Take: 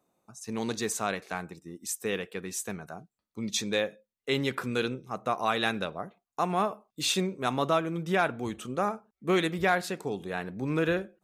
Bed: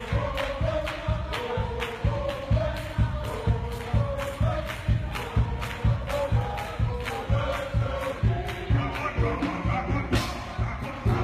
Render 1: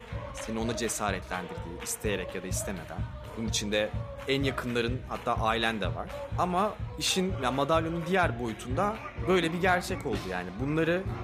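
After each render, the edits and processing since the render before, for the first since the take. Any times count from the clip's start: add bed -11 dB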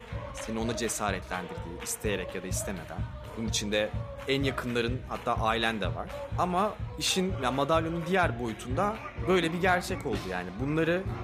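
nothing audible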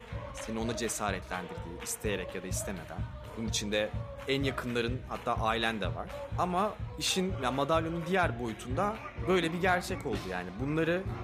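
gain -2.5 dB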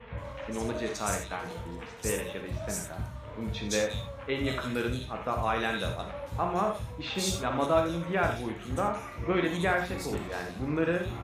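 bands offset in time lows, highs 0.17 s, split 3400 Hz; non-linear reverb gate 0.11 s flat, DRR 3 dB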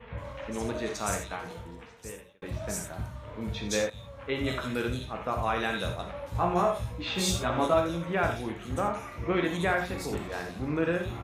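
1.24–2.42 fade out; 3.9–4.31 fade in, from -15 dB; 6.33–7.74 doubler 17 ms -2.5 dB

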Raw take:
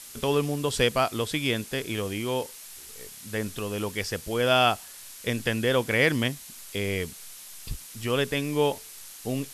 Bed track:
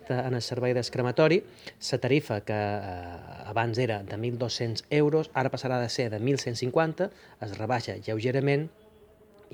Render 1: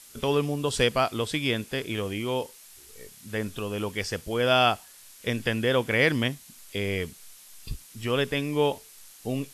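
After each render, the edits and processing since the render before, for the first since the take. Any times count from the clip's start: noise print and reduce 6 dB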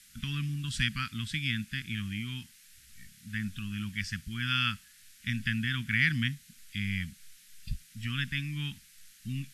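Chebyshev band-stop 210–1600 Hz, order 3; high shelf 4600 Hz -10 dB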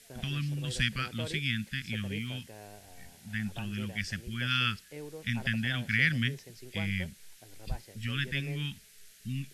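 add bed track -20.5 dB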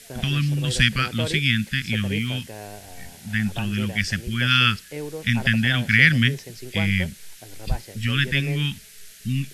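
gain +11 dB

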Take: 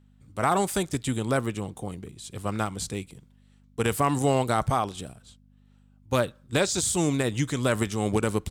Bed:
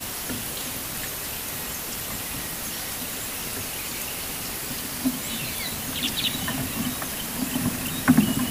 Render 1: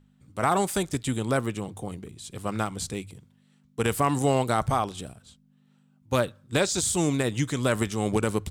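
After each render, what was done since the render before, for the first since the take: de-hum 50 Hz, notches 2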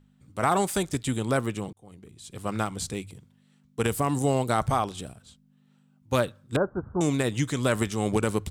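1.73–2.51 fade in; 3.87–4.5 bell 1800 Hz -5.5 dB 2.6 oct; 6.56–7.01 Chebyshev low-pass 1500 Hz, order 6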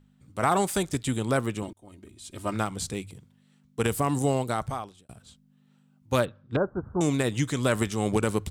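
1.62–2.54 comb 3.2 ms; 4.23–5.09 fade out; 6.25–6.85 air absorption 250 m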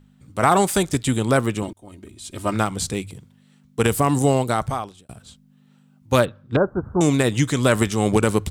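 gain +7 dB

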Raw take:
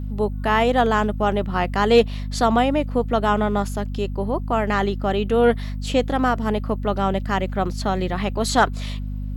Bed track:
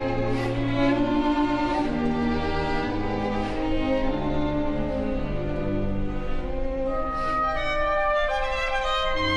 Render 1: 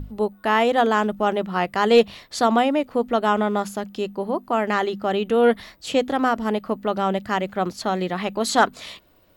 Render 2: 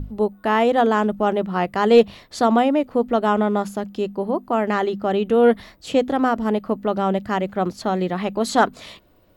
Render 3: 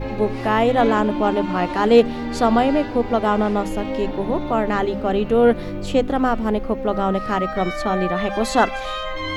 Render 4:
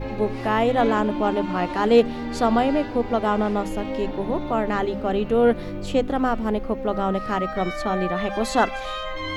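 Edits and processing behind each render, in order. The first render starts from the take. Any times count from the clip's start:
notches 50/100/150/200/250 Hz
tilt shelf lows +3.5 dB
add bed track -2.5 dB
gain -3 dB

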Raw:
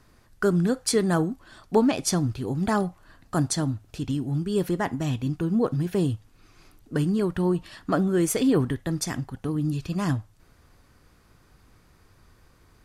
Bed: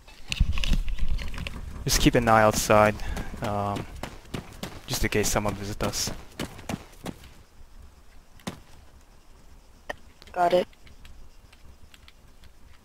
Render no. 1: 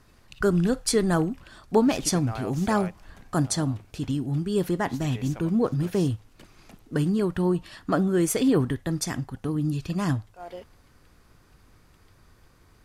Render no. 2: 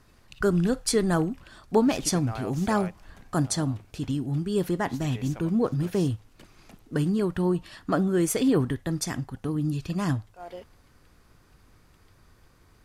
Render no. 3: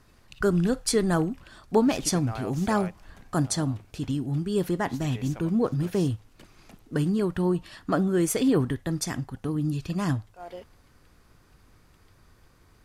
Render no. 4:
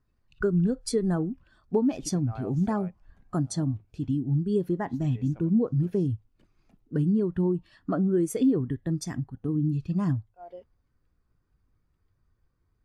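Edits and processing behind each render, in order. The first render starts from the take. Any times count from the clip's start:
add bed -18.5 dB
gain -1 dB
nothing audible
compressor 5:1, threshold -24 dBFS, peak gain reduction 8.5 dB; spectral expander 1.5:1

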